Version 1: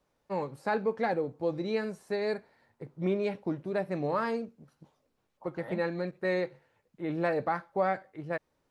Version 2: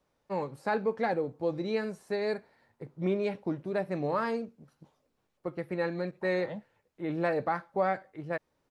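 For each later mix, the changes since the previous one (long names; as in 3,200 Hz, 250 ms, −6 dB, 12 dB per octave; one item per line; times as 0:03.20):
second voice: entry +0.80 s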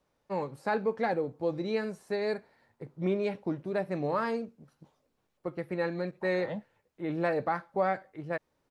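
second voice +3.0 dB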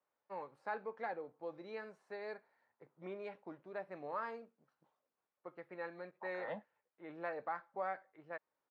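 first voice −8.5 dB
master: add resonant band-pass 1,200 Hz, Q 0.81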